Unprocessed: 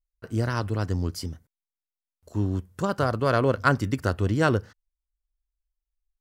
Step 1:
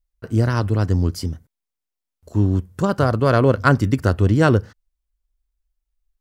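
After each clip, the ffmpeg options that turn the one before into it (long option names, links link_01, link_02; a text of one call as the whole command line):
ffmpeg -i in.wav -af "lowshelf=frequency=470:gain=5.5,volume=3.5dB" out.wav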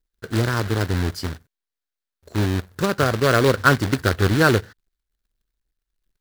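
ffmpeg -i in.wav -af "acrusher=bits=2:mode=log:mix=0:aa=0.000001,equalizer=frequency=400:width_type=o:width=0.67:gain=5,equalizer=frequency=1600:width_type=o:width=0.67:gain=8,equalizer=frequency=4000:width_type=o:width=0.67:gain=6,volume=-4.5dB" out.wav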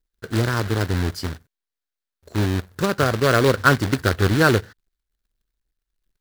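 ffmpeg -i in.wav -af anull out.wav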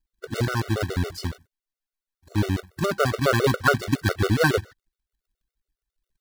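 ffmpeg -i in.wav -af "afftfilt=real='re*gt(sin(2*PI*7.2*pts/sr)*(1-2*mod(floor(b*sr/1024/380),2)),0)':imag='im*gt(sin(2*PI*7.2*pts/sr)*(1-2*mod(floor(b*sr/1024/380),2)),0)':win_size=1024:overlap=0.75" out.wav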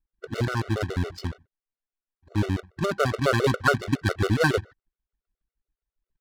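ffmpeg -i in.wav -af "adynamicsmooth=sensitivity=6.5:basefreq=2300,volume=-1.5dB" out.wav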